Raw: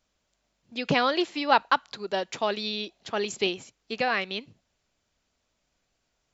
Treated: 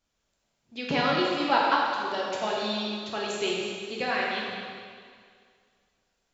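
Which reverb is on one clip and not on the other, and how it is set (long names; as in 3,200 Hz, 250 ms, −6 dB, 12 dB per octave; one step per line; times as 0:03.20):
dense smooth reverb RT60 2.1 s, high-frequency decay 0.95×, DRR −4.5 dB
level −6 dB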